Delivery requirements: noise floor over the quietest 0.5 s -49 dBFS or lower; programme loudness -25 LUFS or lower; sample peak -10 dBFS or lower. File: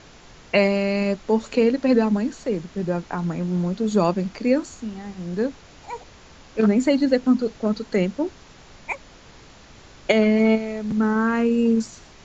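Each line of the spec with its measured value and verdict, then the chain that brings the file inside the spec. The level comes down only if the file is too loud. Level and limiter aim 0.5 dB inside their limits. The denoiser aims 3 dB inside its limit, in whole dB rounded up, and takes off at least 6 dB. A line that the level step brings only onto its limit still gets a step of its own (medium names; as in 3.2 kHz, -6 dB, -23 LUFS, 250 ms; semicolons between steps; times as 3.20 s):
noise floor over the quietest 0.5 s -47 dBFS: fail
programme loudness -22.0 LUFS: fail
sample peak -6.0 dBFS: fail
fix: trim -3.5 dB; peak limiter -10.5 dBFS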